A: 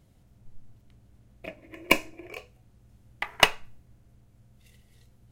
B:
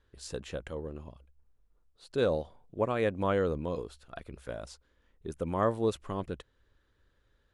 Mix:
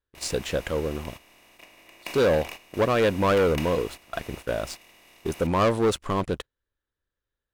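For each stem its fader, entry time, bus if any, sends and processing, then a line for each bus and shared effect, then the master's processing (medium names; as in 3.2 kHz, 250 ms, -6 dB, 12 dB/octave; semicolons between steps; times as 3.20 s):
-10.5 dB, 0.15 s, no send, spectral levelling over time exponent 0.2; treble shelf 6.1 kHz +8 dB; auto duck -11 dB, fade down 0.35 s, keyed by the second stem
+2.0 dB, 0.00 s, no send, waveshaping leveller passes 3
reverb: none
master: gate -36 dBFS, range -11 dB; bass shelf 350 Hz -3.5 dB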